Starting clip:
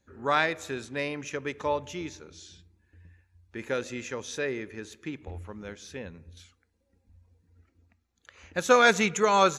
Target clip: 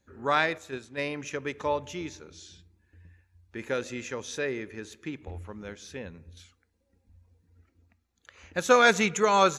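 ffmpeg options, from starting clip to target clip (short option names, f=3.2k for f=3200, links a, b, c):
-filter_complex "[0:a]asettb=1/sr,asplit=3[a][b][c];[a]atrim=end=0.584[d];[b]atrim=start=0.58:end=1.09,asetpts=PTS-STARTPTS,afade=t=in:d=0.004:c=qsin,afade=t=out:st=0.506:d=0.004:c=qsin,agate=range=-7dB:threshold=-32dB:ratio=16:detection=peak[e];[c]atrim=start=1.086[f];[d][e]acrossfade=d=0.004:c1=hsin:c2=qsin[g];[g][f]acrossfade=d=0.004:c1=qsin:c2=hsin"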